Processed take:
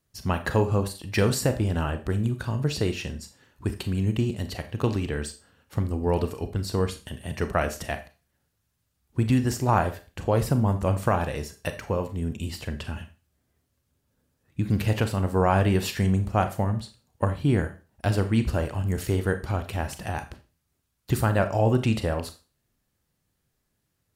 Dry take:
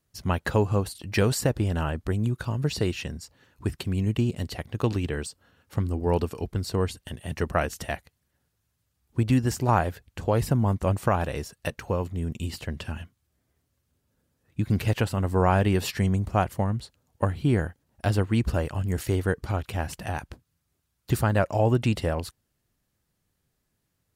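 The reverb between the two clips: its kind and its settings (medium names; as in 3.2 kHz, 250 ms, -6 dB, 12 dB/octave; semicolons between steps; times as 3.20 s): Schroeder reverb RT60 0.33 s, combs from 28 ms, DRR 8.5 dB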